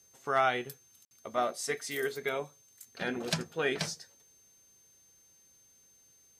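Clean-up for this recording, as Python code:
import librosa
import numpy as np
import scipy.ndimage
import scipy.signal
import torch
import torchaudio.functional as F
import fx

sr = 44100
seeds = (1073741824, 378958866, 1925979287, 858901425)

y = fx.fix_declip(x, sr, threshold_db=-16.5)
y = fx.notch(y, sr, hz=6300.0, q=30.0)
y = fx.fix_ambience(y, sr, seeds[0], print_start_s=4.94, print_end_s=5.44, start_s=1.05, end_s=1.11)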